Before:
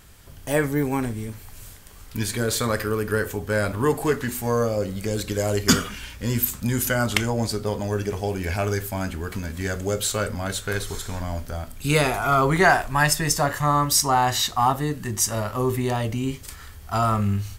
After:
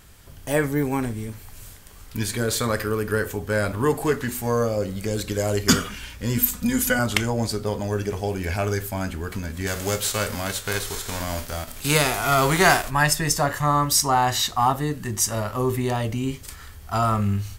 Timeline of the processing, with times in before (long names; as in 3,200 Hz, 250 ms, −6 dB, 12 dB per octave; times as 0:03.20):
0:06.37–0:06.99: comb filter 4.1 ms, depth 75%
0:09.66–0:12.89: spectral envelope flattened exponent 0.6